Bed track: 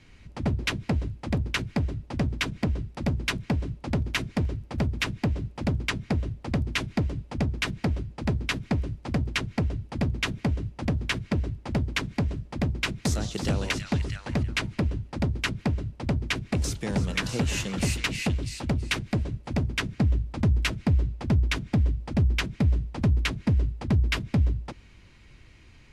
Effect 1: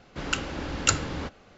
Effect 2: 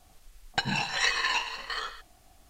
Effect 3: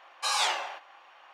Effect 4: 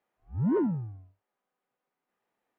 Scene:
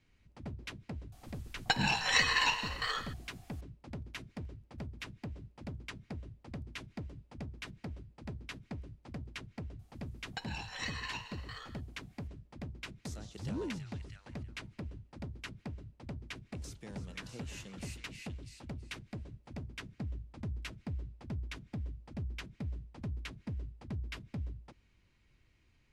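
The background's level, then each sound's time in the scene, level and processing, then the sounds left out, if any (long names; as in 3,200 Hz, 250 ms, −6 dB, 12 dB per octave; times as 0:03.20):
bed track −17 dB
0:01.12: mix in 2 −1.5 dB
0:09.79: mix in 2 −14 dB
0:13.05: mix in 4 −12.5 dB
not used: 1, 3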